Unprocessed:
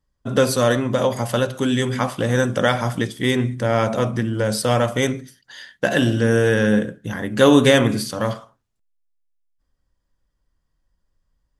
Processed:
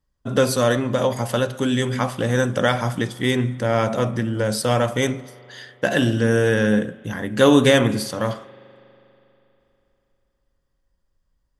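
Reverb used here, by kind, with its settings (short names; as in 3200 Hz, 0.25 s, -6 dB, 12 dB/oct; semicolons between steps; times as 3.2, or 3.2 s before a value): spring tank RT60 3.3 s, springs 40 ms, chirp 50 ms, DRR 20 dB; gain -1 dB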